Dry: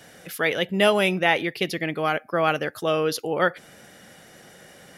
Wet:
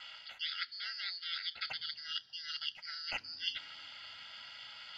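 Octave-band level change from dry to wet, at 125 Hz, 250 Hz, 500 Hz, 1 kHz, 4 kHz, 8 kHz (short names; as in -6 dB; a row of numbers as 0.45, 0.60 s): under -35 dB, under -40 dB, under -40 dB, -25.0 dB, -5.5 dB, -22.0 dB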